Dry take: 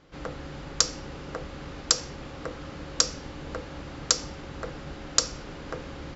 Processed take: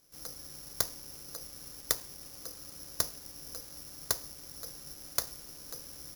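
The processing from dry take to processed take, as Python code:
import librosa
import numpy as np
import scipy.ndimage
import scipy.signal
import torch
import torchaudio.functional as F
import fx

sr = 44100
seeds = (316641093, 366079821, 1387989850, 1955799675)

y = (np.kron(x[::8], np.eye(8)[0]) * 8)[:len(x)]
y = F.gain(torch.from_numpy(y), -17.0).numpy()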